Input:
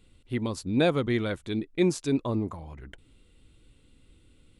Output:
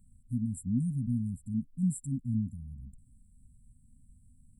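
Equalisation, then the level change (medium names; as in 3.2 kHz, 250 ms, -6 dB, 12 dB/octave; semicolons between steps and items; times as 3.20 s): brick-wall FIR band-stop 260–7300 Hz; 0.0 dB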